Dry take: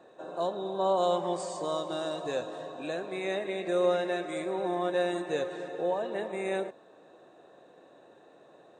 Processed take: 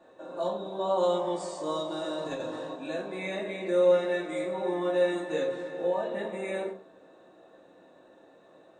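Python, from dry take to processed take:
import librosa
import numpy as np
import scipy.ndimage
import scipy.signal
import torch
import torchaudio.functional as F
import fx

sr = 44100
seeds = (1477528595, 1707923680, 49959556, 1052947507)

y = fx.over_compress(x, sr, threshold_db=-34.0, ratio=-0.5, at=(2.17, 2.73), fade=0.02)
y = fx.room_shoebox(y, sr, seeds[0], volume_m3=240.0, walls='furnished', distance_m=2.5)
y = F.gain(torch.from_numpy(y), -5.0).numpy()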